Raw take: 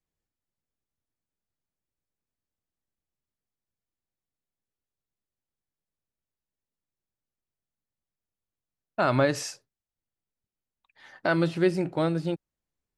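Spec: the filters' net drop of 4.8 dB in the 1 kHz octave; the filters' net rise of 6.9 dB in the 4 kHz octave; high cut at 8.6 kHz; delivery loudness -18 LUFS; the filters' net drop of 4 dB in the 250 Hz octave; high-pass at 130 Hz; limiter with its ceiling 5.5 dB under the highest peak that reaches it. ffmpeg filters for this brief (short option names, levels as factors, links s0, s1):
-af "highpass=130,lowpass=8600,equalizer=f=250:t=o:g=-5.5,equalizer=f=1000:t=o:g=-7.5,equalizer=f=4000:t=o:g=9,volume=4.47,alimiter=limit=0.631:level=0:latency=1"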